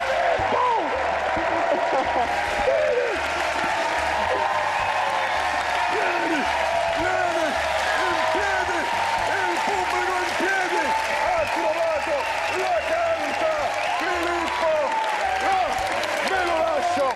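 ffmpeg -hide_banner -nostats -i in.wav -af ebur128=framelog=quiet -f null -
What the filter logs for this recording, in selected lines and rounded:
Integrated loudness:
  I:         -22.3 LUFS
  Threshold: -32.3 LUFS
Loudness range:
  LRA:         0.8 LU
  Threshold: -42.4 LUFS
  LRA low:   -22.8 LUFS
  LRA high:  -22.0 LUFS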